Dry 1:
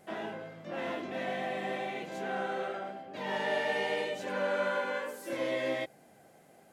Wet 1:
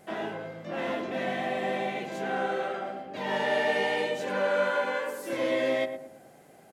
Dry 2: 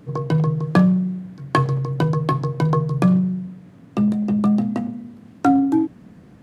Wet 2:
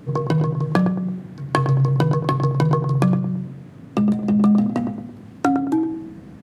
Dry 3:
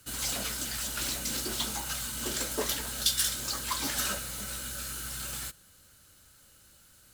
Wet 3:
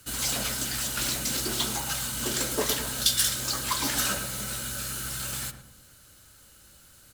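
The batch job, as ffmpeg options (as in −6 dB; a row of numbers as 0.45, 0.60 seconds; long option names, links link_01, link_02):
-filter_complex "[0:a]acompressor=threshold=-20dB:ratio=4,asplit=2[link_01][link_02];[link_02]adelay=111,lowpass=frequency=970:poles=1,volume=-6.5dB,asplit=2[link_03][link_04];[link_04]adelay=111,lowpass=frequency=970:poles=1,volume=0.45,asplit=2[link_05][link_06];[link_06]adelay=111,lowpass=frequency=970:poles=1,volume=0.45,asplit=2[link_07][link_08];[link_08]adelay=111,lowpass=frequency=970:poles=1,volume=0.45,asplit=2[link_09][link_10];[link_10]adelay=111,lowpass=frequency=970:poles=1,volume=0.45[link_11];[link_01][link_03][link_05][link_07][link_09][link_11]amix=inputs=6:normalize=0,volume=4dB"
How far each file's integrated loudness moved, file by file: +5.0, 0.0, +4.0 LU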